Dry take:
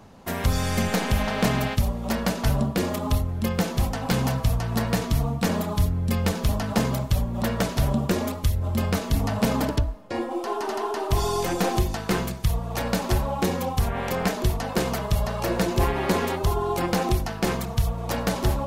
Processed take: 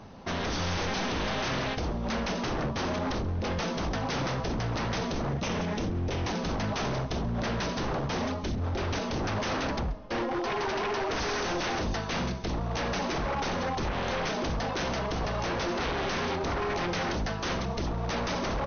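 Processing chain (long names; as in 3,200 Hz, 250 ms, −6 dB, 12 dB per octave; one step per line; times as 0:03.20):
0:05.31–0:06.27: lower of the sound and its delayed copy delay 0.34 ms
speech leveller within 3 dB 2 s
wave folding −25 dBFS
linear-phase brick-wall low-pass 6,400 Hz
single-tap delay 133 ms −22 dB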